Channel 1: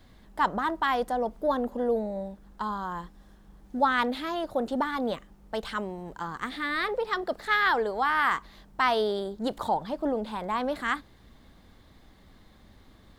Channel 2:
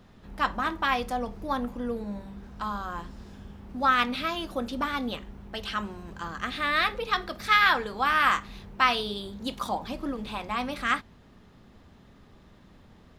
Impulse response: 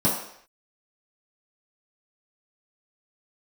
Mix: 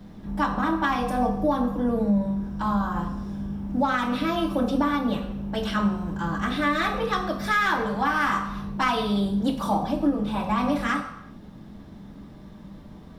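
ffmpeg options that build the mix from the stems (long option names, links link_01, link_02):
-filter_complex "[0:a]volume=-2dB[link_01];[1:a]asoftclip=type=tanh:threshold=-16.5dB,volume=-4dB,asplit=2[link_02][link_03];[link_03]volume=-7dB[link_04];[2:a]atrim=start_sample=2205[link_05];[link_04][link_05]afir=irnorm=-1:irlink=0[link_06];[link_01][link_02][link_06]amix=inputs=3:normalize=0,alimiter=limit=-13.5dB:level=0:latency=1:release=409"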